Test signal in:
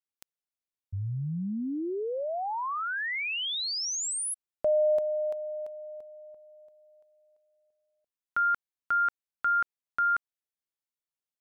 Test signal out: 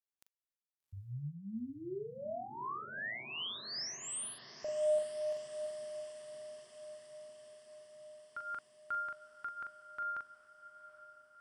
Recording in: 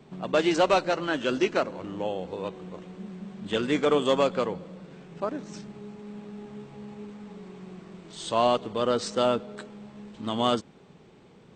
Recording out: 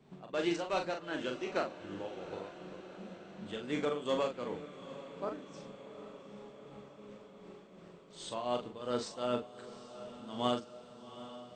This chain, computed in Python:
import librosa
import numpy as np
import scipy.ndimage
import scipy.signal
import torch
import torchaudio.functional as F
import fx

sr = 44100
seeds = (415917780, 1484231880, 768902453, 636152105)

p1 = fx.tremolo_shape(x, sr, shape='triangle', hz=2.7, depth_pct=80)
p2 = fx.doubler(p1, sr, ms=41.0, db=-5.5)
p3 = p2 + fx.echo_diffused(p2, sr, ms=785, feedback_pct=66, wet_db=-14.0, dry=0)
y = p3 * 10.0 ** (-8.0 / 20.0)